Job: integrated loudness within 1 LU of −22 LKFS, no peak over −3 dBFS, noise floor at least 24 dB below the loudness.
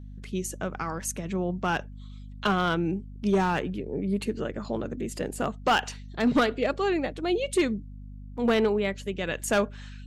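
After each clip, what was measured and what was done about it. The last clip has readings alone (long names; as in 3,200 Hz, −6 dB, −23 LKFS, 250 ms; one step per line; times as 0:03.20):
share of clipped samples 0.7%; peaks flattened at −16.5 dBFS; mains hum 50 Hz; hum harmonics up to 250 Hz; level of the hum −39 dBFS; integrated loudness −28.0 LKFS; sample peak −16.5 dBFS; target loudness −22.0 LKFS
→ clipped peaks rebuilt −16.5 dBFS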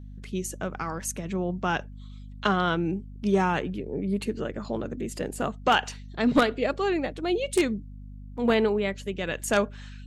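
share of clipped samples 0.0%; mains hum 50 Hz; hum harmonics up to 250 Hz; level of the hum −39 dBFS
→ mains-hum notches 50/100/150/200/250 Hz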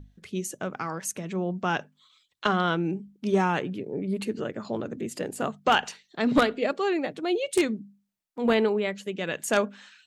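mains hum none found; integrated loudness −28.0 LKFS; sample peak −7.5 dBFS; target loudness −22.0 LKFS
→ level +6 dB
brickwall limiter −3 dBFS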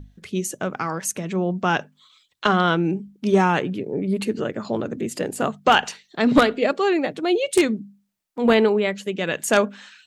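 integrated loudness −22.0 LKFS; sample peak −3.0 dBFS; background noise floor −67 dBFS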